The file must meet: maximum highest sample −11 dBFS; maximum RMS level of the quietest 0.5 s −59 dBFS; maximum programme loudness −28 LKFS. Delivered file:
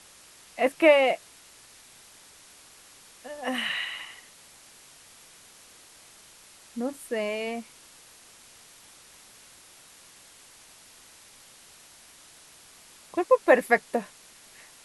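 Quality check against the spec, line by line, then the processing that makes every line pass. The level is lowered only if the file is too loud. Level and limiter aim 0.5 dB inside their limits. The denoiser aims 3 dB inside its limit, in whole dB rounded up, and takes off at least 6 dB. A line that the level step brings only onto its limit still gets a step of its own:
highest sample −6.0 dBFS: out of spec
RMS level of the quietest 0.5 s −53 dBFS: out of spec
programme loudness −25.5 LKFS: out of spec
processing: broadband denoise 6 dB, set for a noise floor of −53 dBFS
level −3 dB
brickwall limiter −11.5 dBFS

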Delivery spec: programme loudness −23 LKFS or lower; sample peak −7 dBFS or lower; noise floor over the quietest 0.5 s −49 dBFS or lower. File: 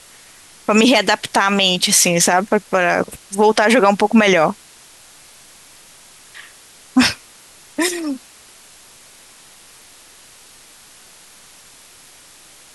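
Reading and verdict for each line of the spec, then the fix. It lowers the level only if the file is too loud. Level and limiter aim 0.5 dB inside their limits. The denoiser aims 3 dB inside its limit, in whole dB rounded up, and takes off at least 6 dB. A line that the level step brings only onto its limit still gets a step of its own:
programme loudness −15.0 LKFS: out of spec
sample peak −2.5 dBFS: out of spec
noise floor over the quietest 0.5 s −45 dBFS: out of spec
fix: level −8.5 dB

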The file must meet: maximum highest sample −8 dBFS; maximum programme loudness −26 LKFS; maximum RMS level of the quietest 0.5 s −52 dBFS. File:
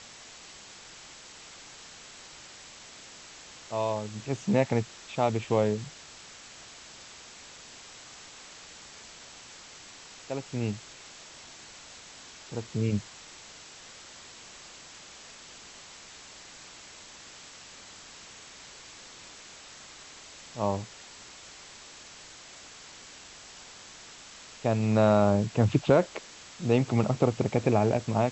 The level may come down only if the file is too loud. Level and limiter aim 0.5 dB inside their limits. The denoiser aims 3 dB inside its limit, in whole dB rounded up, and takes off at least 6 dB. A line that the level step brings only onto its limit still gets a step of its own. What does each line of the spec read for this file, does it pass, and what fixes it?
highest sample −8.5 dBFS: in spec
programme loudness −27.5 LKFS: in spec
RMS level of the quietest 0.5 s −49 dBFS: out of spec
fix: broadband denoise 6 dB, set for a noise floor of −49 dBFS

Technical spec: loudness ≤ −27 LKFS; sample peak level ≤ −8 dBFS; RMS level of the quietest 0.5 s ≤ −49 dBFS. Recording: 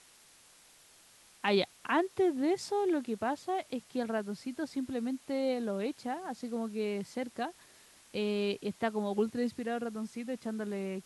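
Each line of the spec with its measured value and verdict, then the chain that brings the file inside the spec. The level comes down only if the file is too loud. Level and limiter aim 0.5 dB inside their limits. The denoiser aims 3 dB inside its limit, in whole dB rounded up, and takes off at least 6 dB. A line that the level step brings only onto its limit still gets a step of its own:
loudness −34.0 LKFS: in spec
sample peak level −16.5 dBFS: in spec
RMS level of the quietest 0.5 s −60 dBFS: in spec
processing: no processing needed

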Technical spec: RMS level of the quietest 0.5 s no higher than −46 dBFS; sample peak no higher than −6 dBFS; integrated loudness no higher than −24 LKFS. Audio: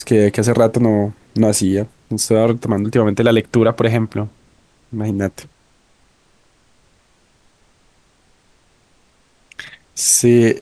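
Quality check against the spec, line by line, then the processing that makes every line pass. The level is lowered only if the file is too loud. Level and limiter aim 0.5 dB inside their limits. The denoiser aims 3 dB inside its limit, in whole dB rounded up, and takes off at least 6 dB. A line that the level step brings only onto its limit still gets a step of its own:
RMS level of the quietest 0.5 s −56 dBFS: in spec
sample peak −2.0 dBFS: out of spec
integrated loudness −16.0 LKFS: out of spec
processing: level −8.5 dB

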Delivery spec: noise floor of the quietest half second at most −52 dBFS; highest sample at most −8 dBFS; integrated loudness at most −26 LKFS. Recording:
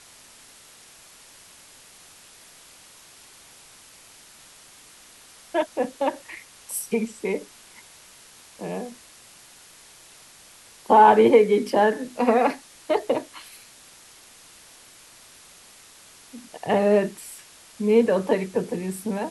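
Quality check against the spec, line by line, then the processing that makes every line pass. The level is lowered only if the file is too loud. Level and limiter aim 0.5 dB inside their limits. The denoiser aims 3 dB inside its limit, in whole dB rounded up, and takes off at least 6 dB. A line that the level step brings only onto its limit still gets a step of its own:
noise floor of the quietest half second −50 dBFS: out of spec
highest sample −4.5 dBFS: out of spec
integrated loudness −22.0 LKFS: out of spec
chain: level −4.5 dB

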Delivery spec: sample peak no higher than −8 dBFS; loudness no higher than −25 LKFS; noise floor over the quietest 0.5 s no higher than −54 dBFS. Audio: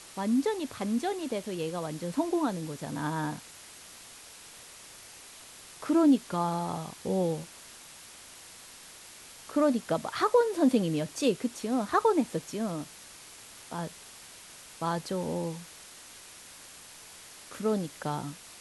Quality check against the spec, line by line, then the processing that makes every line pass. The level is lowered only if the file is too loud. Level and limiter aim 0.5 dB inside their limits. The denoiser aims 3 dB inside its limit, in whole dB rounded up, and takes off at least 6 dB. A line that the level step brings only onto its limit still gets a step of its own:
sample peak −13.0 dBFS: in spec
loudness −30.0 LKFS: in spec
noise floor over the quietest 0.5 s −50 dBFS: out of spec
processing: broadband denoise 7 dB, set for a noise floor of −50 dBFS

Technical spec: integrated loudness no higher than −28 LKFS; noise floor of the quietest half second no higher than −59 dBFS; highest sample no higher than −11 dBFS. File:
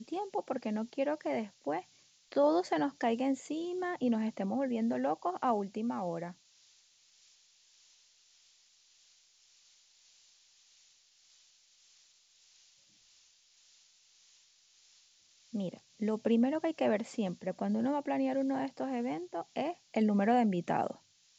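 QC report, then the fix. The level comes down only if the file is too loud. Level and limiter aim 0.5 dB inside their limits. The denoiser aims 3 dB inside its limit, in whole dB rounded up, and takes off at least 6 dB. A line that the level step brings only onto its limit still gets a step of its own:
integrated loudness −33.5 LKFS: in spec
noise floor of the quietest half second −66 dBFS: in spec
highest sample −16.5 dBFS: in spec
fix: no processing needed

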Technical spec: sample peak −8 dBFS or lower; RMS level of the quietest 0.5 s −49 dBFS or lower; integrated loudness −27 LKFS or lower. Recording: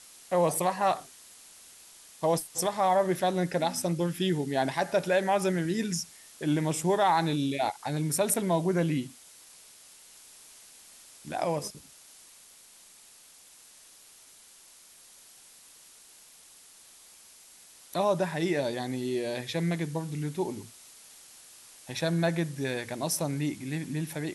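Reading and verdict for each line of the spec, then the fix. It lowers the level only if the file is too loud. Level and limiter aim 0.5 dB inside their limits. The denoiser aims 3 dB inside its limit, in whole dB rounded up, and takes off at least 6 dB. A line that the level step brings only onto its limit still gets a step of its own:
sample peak −14.0 dBFS: in spec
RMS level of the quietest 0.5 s −55 dBFS: in spec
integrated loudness −29.0 LKFS: in spec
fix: no processing needed

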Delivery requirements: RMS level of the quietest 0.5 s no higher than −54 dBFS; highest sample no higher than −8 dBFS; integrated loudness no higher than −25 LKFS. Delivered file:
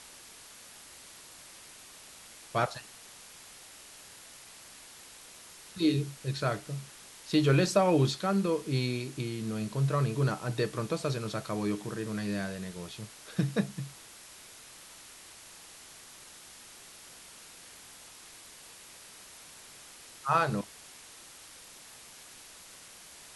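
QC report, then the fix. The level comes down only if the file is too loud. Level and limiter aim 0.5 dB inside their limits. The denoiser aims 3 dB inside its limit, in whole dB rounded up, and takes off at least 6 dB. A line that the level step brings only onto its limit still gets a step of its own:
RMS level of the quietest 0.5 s −51 dBFS: out of spec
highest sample −12.5 dBFS: in spec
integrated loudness −31.0 LKFS: in spec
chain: broadband denoise 6 dB, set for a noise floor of −51 dBFS

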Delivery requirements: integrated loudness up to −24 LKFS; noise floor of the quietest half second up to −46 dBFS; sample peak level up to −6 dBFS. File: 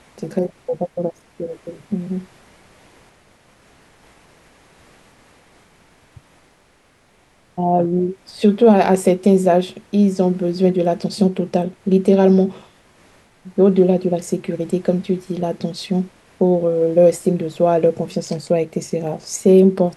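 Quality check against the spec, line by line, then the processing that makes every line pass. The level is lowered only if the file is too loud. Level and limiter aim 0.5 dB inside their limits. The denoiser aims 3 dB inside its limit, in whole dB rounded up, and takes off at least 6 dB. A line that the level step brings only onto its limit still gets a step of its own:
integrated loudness −18.0 LKFS: out of spec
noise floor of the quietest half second −56 dBFS: in spec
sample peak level −3.0 dBFS: out of spec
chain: level −6.5 dB

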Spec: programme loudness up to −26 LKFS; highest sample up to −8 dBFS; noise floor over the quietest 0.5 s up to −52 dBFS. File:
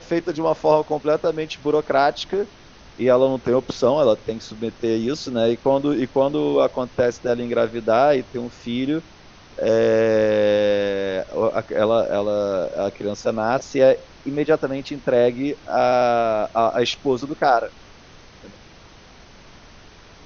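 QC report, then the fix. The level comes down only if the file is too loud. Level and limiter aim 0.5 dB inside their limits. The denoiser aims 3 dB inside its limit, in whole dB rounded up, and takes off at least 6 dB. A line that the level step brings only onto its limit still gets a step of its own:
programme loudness −20.5 LKFS: out of spec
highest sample −4.0 dBFS: out of spec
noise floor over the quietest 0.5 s −46 dBFS: out of spec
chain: broadband denoise 6 dB, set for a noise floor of −46 dBFS
level −6 dB

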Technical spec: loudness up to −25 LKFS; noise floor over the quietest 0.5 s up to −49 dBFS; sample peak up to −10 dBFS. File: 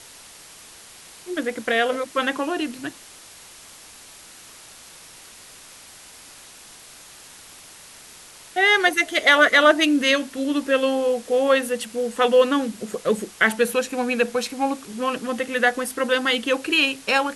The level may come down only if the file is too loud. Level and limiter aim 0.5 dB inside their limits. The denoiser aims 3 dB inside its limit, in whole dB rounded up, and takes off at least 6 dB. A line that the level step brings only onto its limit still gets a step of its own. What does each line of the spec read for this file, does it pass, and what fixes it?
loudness −20.5 LKFS: out of spec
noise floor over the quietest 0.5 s −45 dBFS: out of spec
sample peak −2.5 dBFS: out of spec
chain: level −5 dB
brickwall limiter −10.5 dBFS

